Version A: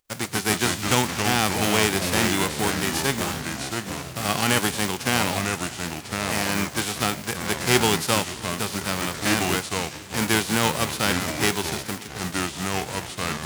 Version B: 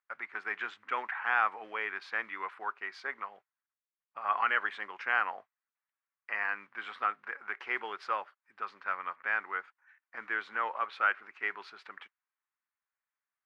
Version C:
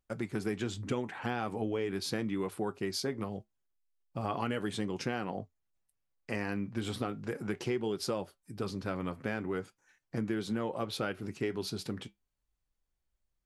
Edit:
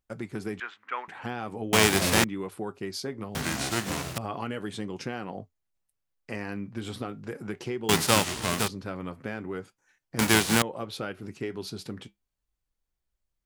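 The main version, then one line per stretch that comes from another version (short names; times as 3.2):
C
0.6–1.08 from B
1.73–2.24 from A
3.35–4.18 from A
7.89–8.68 from A
10.19–10.62 from A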